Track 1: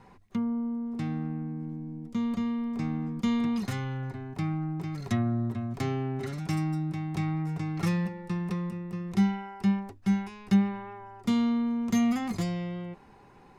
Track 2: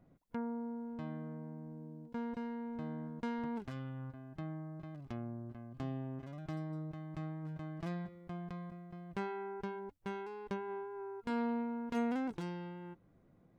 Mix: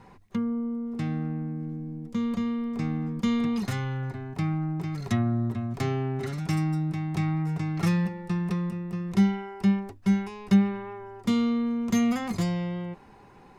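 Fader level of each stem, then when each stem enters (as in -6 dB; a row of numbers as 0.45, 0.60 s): +2.5, -1.5 dB; 0.00, 0.00 s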